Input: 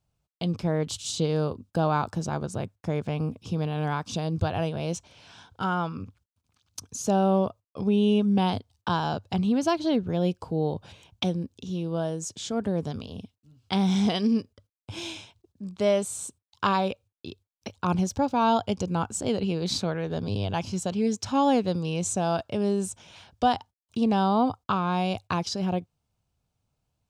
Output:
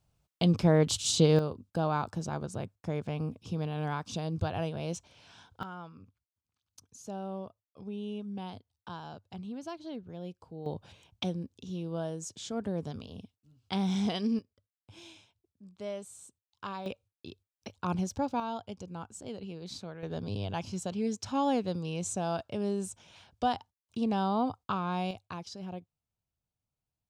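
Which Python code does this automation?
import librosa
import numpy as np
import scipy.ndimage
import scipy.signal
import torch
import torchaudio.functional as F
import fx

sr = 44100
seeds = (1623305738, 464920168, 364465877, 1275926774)

y = fx.gain(x, sr, db=fx.steps((0.0, 3.0), (1.39, -5.5), (5.63, -16.5), (10.66, -6.5), (14.39, -15.5), (16.86, -6.5), (18.4, -14.5), (20.03, -6.5), (25.11, -13.5)))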